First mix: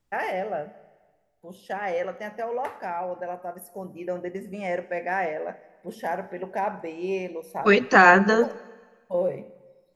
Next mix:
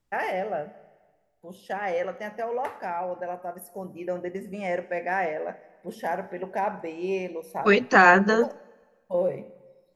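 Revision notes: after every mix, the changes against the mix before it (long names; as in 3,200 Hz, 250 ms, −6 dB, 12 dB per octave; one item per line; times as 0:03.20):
second voice: send −9.5 dB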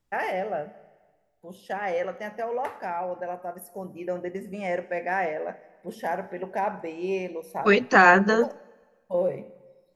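nothing changed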